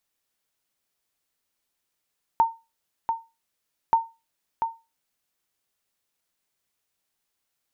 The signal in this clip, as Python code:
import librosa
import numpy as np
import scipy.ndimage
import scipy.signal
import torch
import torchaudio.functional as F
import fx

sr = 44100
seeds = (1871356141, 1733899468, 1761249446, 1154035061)

y = fx.sonar_ping(sr, hz=911.0, decay_s=0.26, every_s=1.53, pings=2, echo_s=0.69, echo_db=-6.5, level_db=-11.0)